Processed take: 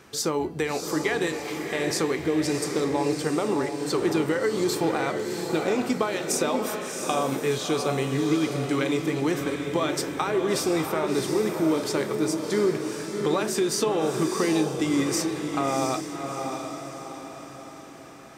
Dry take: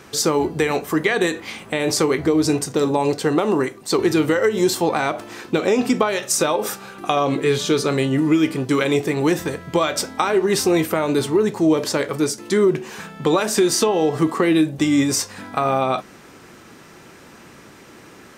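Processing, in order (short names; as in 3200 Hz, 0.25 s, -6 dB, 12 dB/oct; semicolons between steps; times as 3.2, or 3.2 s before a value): diffused feedback echo 0.691 s, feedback 48%, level -5 dB; gain -7.5 dB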